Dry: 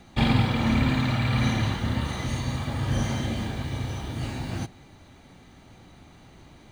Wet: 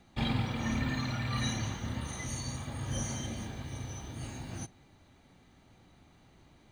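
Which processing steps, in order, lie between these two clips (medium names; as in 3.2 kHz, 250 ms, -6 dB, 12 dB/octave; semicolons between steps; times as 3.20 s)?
spectral noise reduction 13 dB; trim +3 dB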